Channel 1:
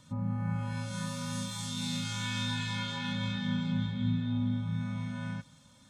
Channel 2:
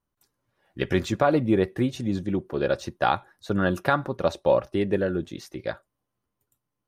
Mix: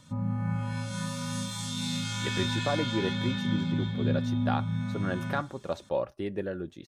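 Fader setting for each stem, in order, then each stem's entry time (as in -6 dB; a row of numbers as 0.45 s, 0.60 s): +2.5 dB, -9.0 dB; 0.00 s, 1.45 s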